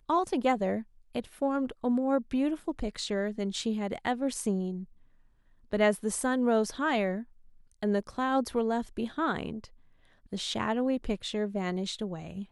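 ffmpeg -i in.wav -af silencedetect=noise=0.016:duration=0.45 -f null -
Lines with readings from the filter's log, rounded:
silence_start: 4.83
silence_end: 5.72 | silence_duration: 0.89
silence_start: 7.22
silence_end: 7.83 | silence_duration: 0.61
silence_start: 9.64
silence_end: 10.33 | silence_duration: 0.69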